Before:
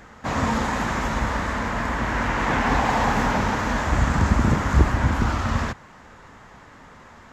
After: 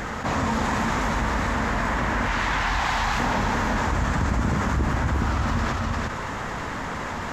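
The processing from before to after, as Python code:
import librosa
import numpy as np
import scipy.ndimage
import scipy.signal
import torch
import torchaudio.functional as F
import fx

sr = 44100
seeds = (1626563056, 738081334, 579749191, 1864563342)

p1 = fx.graphic_eq(x, sr, hz=(125, 250, 500, 4000), db=(-4, -9, -9, 5), at=(2.28, 3.2))
p2 = p1 + fx.echo_single(p1, sr, ms=352, db=-6.0, dry=0)
p3 = fx.env_flatten(p2, sr, amount_pct=70)
y = F.gain(torch.from_numpy(p3), -8.5).numpy()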